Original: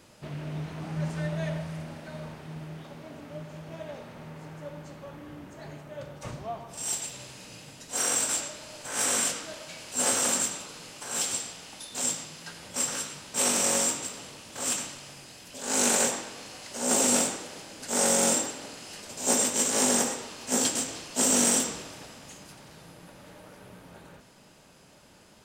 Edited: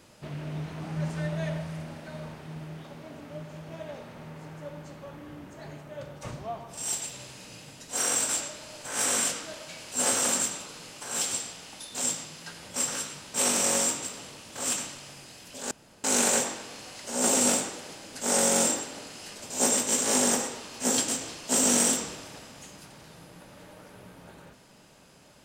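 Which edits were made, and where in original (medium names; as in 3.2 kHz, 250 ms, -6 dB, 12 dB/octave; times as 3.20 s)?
15.71 s: insert room tone 0.33 s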